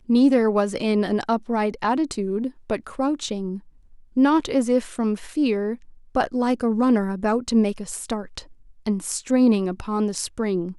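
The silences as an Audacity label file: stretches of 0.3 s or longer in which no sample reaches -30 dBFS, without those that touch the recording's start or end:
3.570000	4.170000	silence
5.750000	6.150000	silence
8.390000	8.860000	silence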